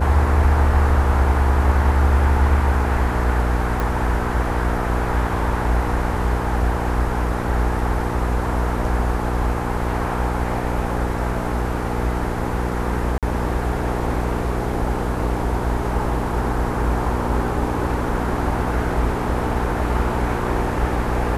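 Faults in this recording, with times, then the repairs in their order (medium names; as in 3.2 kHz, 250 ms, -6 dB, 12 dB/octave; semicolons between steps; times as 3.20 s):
hum 60 Hz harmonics 8 -25 dBFS
3.80 s: pop
13.18–13.23 s: dropout 47 ms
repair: de-click; de-hum 60 Hz, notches 8; interpolate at 13.18 s, 47 ms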